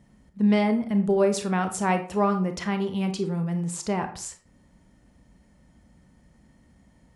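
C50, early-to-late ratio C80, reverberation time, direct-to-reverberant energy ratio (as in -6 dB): 11.0 dB, 15.5 dB, 0.45 s, 7.0 dB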